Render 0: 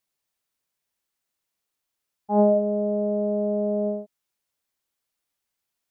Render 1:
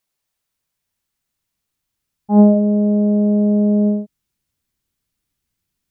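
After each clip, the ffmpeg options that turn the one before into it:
ffmpeg -i in.wav -af "asubboost=boost=7.5:cutoff=230,volume=4dB" out.wav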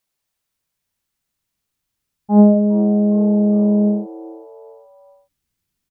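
ffmpeg -i in.wav -filter_complex "[0:a]asplit=4[link_01][link_02][link_03][link_04];[link_02]adelay=406,afreqshift=120,volume=-20dB[link_05];[link_03]adelay=812,afreqshift=240,volume=-26.7dB[link_06];[link_04]adelay=1218,afreqshift=360,volume=-33.5dB[link_07];[link_01][link_05][link_06][link_07]amix=inputs=4:normalize=0" out.wav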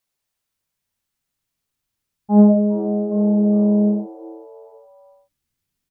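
ffmpeg -i in.wav -af "flanger=delay=7:depth=2.5:regen=-65:speed=0.68:shape=sinusoidal,volume=2.5dB" out.wav

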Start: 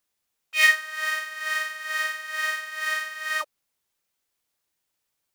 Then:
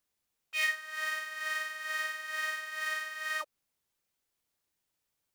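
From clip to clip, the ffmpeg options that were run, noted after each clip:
ffmpeg -i in.wav -af "acompressor=threshold=-29dB:ratio=2,lowshelf=frequency=380:gain=5,volume=-4.5dB" out.wav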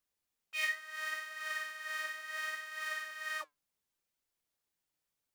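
ffmpeg -i in.wav -af "flanger=delay=0.7:depth=6.3:regen=77:speed=0.71:shape=triangular" out.wav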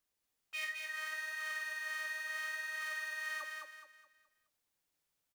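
ffmpeg -i in.wav -filter_complex "[0:a]acompressor=threshold=-41dB:ratio=2.5,asplit=2[link_01][link_02];[link_02]aecho=0:1:211|422|633|844|1055:0.631|0.227|0.0818|0.0294|0.0106[link_03];[link_01][link_03]amix=inputs=2:normalize=0,volume=1dB" out.wav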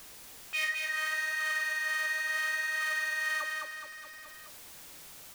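ffmpeg -i in.wav -af "aeval=exprs='val(0)+0.5*0.00299*sgn(val(0))':channel_layout=same,volume=7.5dB" out.wav

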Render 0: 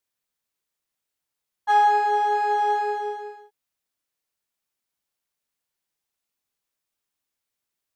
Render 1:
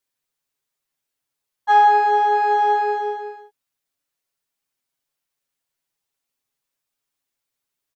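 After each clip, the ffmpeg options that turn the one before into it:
ffmpeg -i in.wav -af "aecho=1:1:7.3:0.72" out.wav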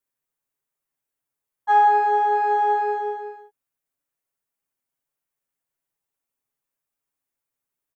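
ffmpeg -i in.wav -af "equalizer=frequency=4200:width_type=o:width=1.5:gain=-9,volume=-2dB" out.wav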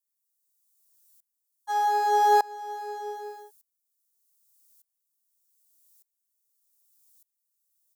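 ffmpeg -i in.wav -af "aexciter=amount=8.1:drive=6.4:freq=3700,aeval=exprs='val(0)*pow(10,-25*if(lt(mod(-0.83*n/s,1),2*abs(-0.83)/1000),1-mod(-0.83*n/s,1)/(2*abs(-0.83)/1000),(mod(-0.83*n/s,1)-2*abs(-0.83)/1000)/(1-2*abs(-0.83)/1000))/20)':channel_layout=same,volume=3dB" out.wav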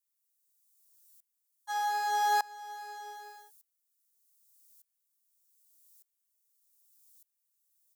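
ffmpeg -i in.wav -af "highpass=1200" out.wav

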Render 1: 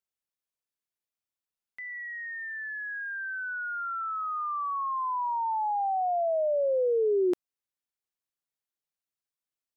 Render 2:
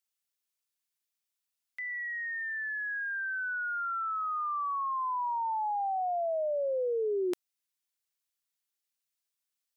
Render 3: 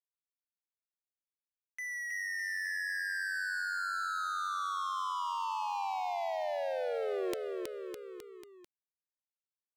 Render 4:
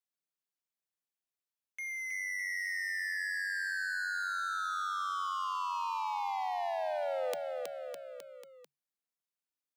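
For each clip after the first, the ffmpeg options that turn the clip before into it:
ffmpeg -i in.wav -af "tiltshelf=frequency=1400:gain=-6.5" out.wav
ffmpeg -i in.wav -filter_complex "[0:a]acrossover=split=330|1800[link_01][link_02][link_03];[link_03]acontrast=70[link_04];[link_01][link_02][link_04]amix=inputs=3:normalize=0,aeval=exprs='sgn(val(0))*max(abs(val(0))-0.0106,0)':channel_layout=same,aecho=1:1:320|608|867.2|1100|1310:0.631|0.398|0.251|0.158|0.1,volume=-3dB" out.wav
ffmpeg -i in.wav -af "afreqshift=140" out.wav

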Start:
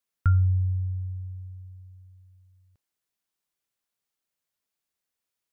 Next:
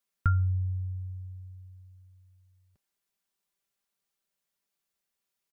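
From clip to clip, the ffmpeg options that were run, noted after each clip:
ffmpeg -i in.wav -af "aecho=1:1:5.1:0.45" out.wav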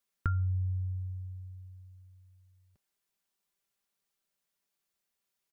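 ffmpeg -i in.wav -af "acompressor=threshold=-29dB:ratio=2.5" out.wav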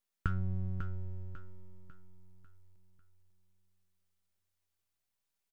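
ffmpeg -i in.wav -af "aeval=exprs='max(val(0),0)':channel_layout=same,aecho=1:1:547|1094|1641|2188|2735:0.376|0.158|0.0663|0.0278|0.0117" out.wav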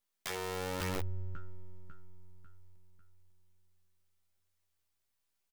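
ffmpeg -i in.wav -filter_complex "[0:a]aeval=exprs='(mod(39.8*val(0)+1,2)-1)/39.8':channel_layout=same,asplit=2[link_01][link_02];[link_02]adelay=13,volume=-5.5dB[link_03];[link_01][link_03]amix=inputs=2:normalize=0,volume=1dB" out.wav

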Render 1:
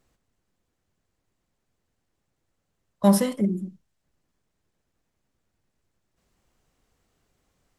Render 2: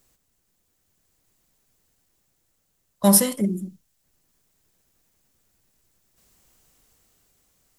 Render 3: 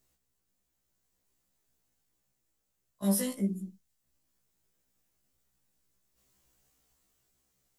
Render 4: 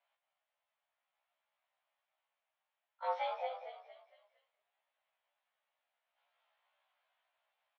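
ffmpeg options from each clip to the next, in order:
ffmpeg -i in.wav -af "aemphasis=mode=production:type=75kf,dynaudnorm=framelen=170:gausssize=11:maxgain=4dB" out.wav
ffmpeg -i in.wav -af "alimiter=limit=-11.5dB:level=0:latency=1:release=15,afftfilt=real='re*1.73*eq(mod(b,3),0)':imag='im*1.73*eq(mod(b,3),0)':win_size=2048:overlap=0.75,volume=-7.5dB" out.wav
ffmpeg -i in.wav -filter_complex "[0:a]asplit=6[link_01][link_02][link_03][link_04][link_05][link_06];[link_02]adelay=229,afreqshift=-56,volume=-7.5dB[link_07];[link_03]adelay=458,afreqshift=-112,volume=-14.2dB[link_08];[link_04]adelay=687,afreqshift=-168,volume=-21dB[link_09];[link_05]adelay=916,afreqshift=-224,volume=-27.7dB[link_10];[link_06]adelay=1145,afreqshift=-280,volume=-34.5dB[link_11];[link_01][link_07][link_08][link_09][link_10][link_11]amix=inputs=6:normalize=0,highpass=frequency=300:width_type=q:width=0.5412,highpass=frequency=300:width_type=q:width=1.307,lowpass=frequency=3100:width_type=q:width=0.5176,lowpass=frequency=3100:width_type=q:width=0.7071,lowpass=frequency=3100:width_type=q:width=1.932,afreqshift=320" out.wav

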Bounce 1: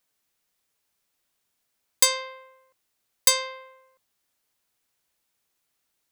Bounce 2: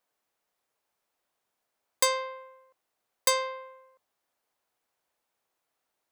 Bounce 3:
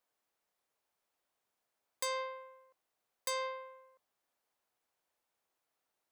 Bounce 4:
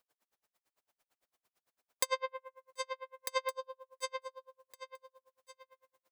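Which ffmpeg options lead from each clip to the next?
ffmpeg -i in.wav -af "equalizer=frequency=720:width=0.48:gain=12.5,volume=-8.5dB" out.wav
ffmpeg -i in.wav -af "alimiter=limit=-20.5dB:level=0:latency=1:release=181,volume=-4dB" out.wav
ffmpeg -i in.wav -filter_complex "[0:a]asplit=2[link_01][link_02];[link_02]aecho=0:1:732|1464|2196|2928:0.501|0.18|0.065|0.0234[link_03];[link_01][link_03]amix=inputs=2:normalize=0,aeval=exprs='val(0)*pow(10,-40*(0.5-0.5*cos(2*PI*8.9*n/s))/20)':channel_layout=same,volume=9dB" out.wav

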